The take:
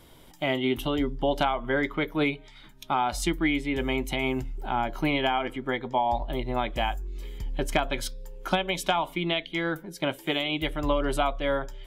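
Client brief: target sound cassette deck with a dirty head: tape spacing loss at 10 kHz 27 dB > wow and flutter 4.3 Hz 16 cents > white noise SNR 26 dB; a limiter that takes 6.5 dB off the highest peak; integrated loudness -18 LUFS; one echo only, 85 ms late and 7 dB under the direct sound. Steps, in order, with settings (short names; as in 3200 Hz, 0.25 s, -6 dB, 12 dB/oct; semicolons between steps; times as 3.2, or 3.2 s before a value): limiter -18 dBFS; tape spacing loss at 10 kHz 27 dB; echo 85 ms -7 dB; wow and flutter 4.3 Hz 16 cents; white noise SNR 26 dB; gain +13.5 dB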